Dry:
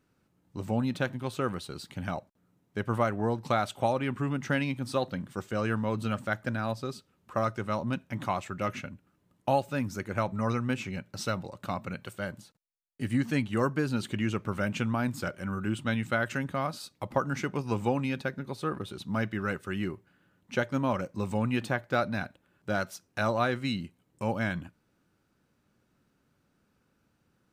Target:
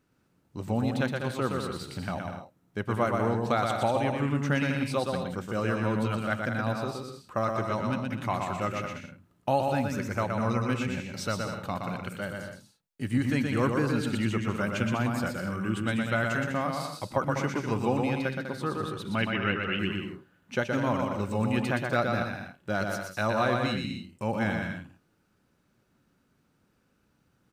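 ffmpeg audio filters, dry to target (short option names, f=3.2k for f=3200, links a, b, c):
-filter_complex "[0:a]asettb=1/sr,asplit=3[a][b][c];[a]atrim=end=19.154[d];[b]atrim=start=19.15:end=19.79,asetpts=PTS-STARTPTS,afade=t=in:d=0.004:c=qsin,afade=t=out:st=0.636:d=0.004:c=qsin,lowpass=f=2.8k:t=q:w=5.2[e];[c]atrim=start=19.786[f];[d][e]acrossfade=d=0.004:c1=hsin:c2=qsin[g];[g][f]acrossfade=d=0.004:c1=qsin:c2=hsin,aecho=1:1:120|198|248.7|281.7|303.1:0.631|0.398|0.251|0.158|0.1"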